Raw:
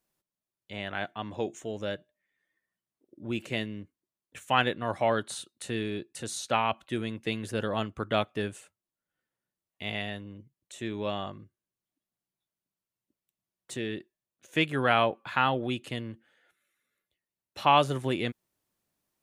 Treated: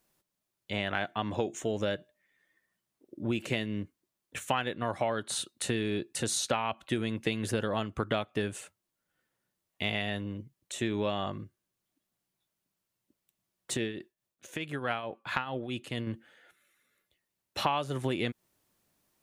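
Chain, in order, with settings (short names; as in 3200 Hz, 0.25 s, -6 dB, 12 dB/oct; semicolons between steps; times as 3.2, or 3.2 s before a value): compressor 12:1, threshold -33 dBFS, peak gain reduction 17.5 dB; 13.77–16.07 tremolo triangle 4.6 Hz, depth 70%; gain +7 dB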